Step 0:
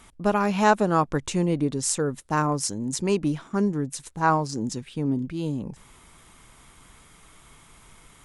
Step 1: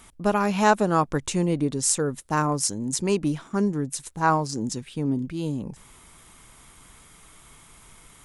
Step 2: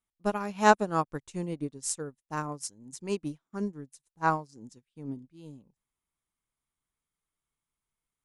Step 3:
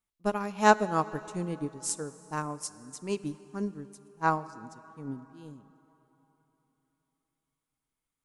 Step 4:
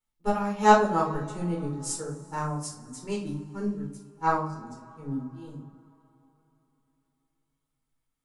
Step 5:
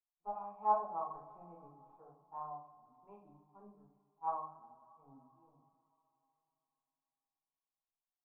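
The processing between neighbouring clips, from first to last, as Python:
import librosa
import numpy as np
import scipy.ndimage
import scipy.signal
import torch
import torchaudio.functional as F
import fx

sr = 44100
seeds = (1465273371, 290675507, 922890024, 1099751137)

y1 = fx.high_shelf(x, sr, hz=7600.0, db=6.5)
y2 = fx.upward_expand(y1, sr, threshold_db=-41.0, expansion=2.5)
y3 = fx.rev_plate(y2, sr, seeds[0], rt60_s=3.7, hf_ratio=0.75, predelay_ms=0, drr_db=15.5)
y4 = fx.room_shoebox(y3, sr, seeds[1], volume_m3=320.0, walls='furnished', distance_m=4.3)
y4 = F.gain(torch.from_numpy(y4), -5.5).numpy()
y5 = fx.formant_cascade(y4, sr, vowel='a')
y5 = F.gain(torch.from_numpy(y5), -3.0).numpy()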